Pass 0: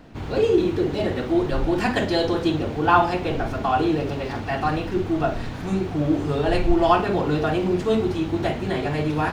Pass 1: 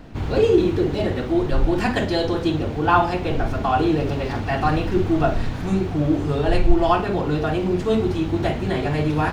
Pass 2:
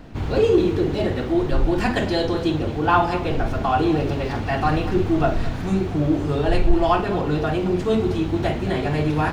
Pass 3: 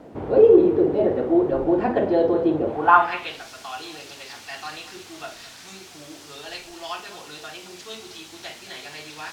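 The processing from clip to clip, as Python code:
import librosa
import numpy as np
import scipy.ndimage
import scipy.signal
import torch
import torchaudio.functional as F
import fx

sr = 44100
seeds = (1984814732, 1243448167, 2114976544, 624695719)

y1 = fx.low_shelf(x, sr, hz=100.0, db=7.5)
y1 = fx.rider(y1, sr, range_db=10, speed_s=2.0)
y2 = 10.0 ** (-4.0 / 20.0) * np.tanh(y1 / 10.0 ** (-4.0 / 20.0))
y2 = y2 + 10.0 ** (-16.0 / 20.0) * np.pad(y2, (int(214 * sr / 1000.0), 0))[:len(y2)]
y3 = fx.air_absorb(y2, sr, metres=63.0)
y3 = fx.quant_dither(y3, sr, seeds[0], bits=8, dither='triangular')
y3 = fx.filter_sweep_bandpass(y3, sr, from_hz=500.0, to_hz=5600.0, start_s=2.64, end_s=3.46, q=1.5)
y3 = F.gain(torch.from_numpy(y3), 6.0).numpy()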